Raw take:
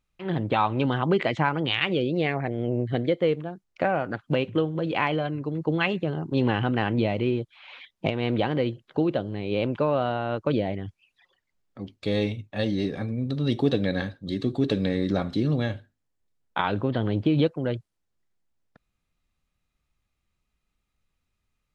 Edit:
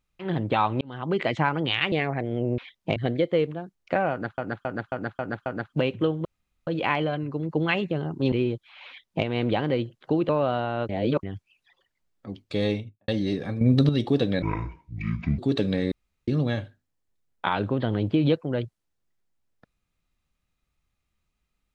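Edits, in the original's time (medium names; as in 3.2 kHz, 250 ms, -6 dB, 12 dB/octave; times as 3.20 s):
0.81–1.29 s: fade in
1.92–2.19 s: delete
4.00–4.27 s: loop, 6 plays
4.79 s: insert room tone 0.42 s
6.44–7.19 s: delete
7.74–8.12 s: copy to 2.85 s
9.16–9.81 s: delete
10.41–10.75 s: reverse
12.18–12.60 s: studio fade out
13.13–13.41 s: gain +9.5 dB
13.94–14.51 s: speed 59%
15.04–15.40 s: room tone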